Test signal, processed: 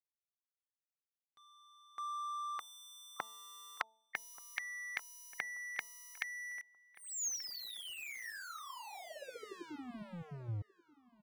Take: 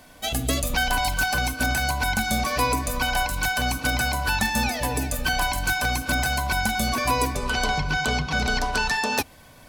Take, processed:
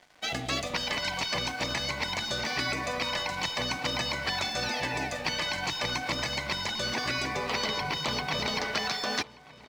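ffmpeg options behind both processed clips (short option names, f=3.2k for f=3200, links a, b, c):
-filter_complex "[0:a]highpass=170,equalizer=f=260:t=q:w=4:g=-7,equalizer=f=780:t=q:w=4:g=6,equalizer=f=2k:t=q:w=4:g=9,lowpass=f=5.6k:w=0.5412,lowpass=f=5.6k:w=1.3066,aeval=exprs='sgn(val(0))*max(abs(val(0))-0.00422,0)':c=same,afftfilt=real='re*lt(hypot(re,im),0.2)':imag='im*lt(hypot(re,im),0.2)':win_size=1024:overlap=0.75,bandreject=f=221.5:t=h:w=4,bandreject=f=443:t=h:w=4,bandreject=f=664.5:t=h:w=4,bandreject=f=886:t=h:w=4,asplit=2[a][b];[b]adelay=1182,lowpass=f=2.7k:p=1,volume=-20dB,asplit=2[c][d];[d]adelay=1182,lowpass=f=2.7k:p=1,volume=0.35,asplit=2[e][f];[f]adelay=1182,lowpass=f=2.7k:p=1,volume=0.35[g];[c][e][g]amix=inputs=3:normalize=0[h];[a][h]amix=inputs=2:normalize=0"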